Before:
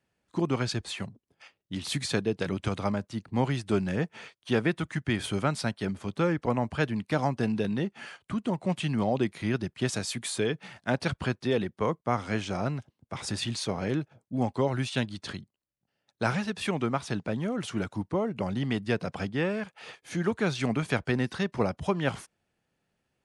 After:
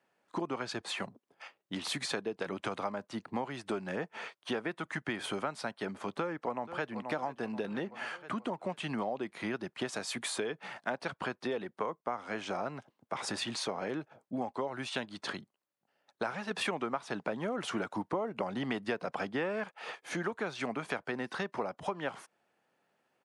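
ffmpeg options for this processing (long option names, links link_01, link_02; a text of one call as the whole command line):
ffmpeg -i in.wav -filter_complex "[0:a]asplit=2[link_01][link_02];[link_02]afade=type=in:start_time=6.13:duration=0.01,afade=type=out:start_time=6.99:duration=0.01,aecho=0:1:480|960|1440|1920|2400:0.177828|0.088914|0.044457|0.0222285|0.0111142[link_03];[link_01][link_03]amix=inputs=2:normalize=0,asplit=3[link_04][link_05][link_06];[link_04]atrim=end=16.512[link_07];[link_05]atrim=start=16.508:end=19.712,asetpts=PTS-STARTPTS,volume=8.5dB[link_08];[link_06]atrim=start=19.708[link_09];[link_07][link_08]acrossfade=duration=0.004:curve1=hsin:curve2=hsin[link_10];[link_10][link_09]acrossfade=duration=0.004:curve1=hsin:curve2=hsin,highpass=200,equalizer=frequency=930:width_type=o:width=2.6:gain=10,acompressor=threshold=-30dB:ratio=6,volume=-2.5dB" out.wav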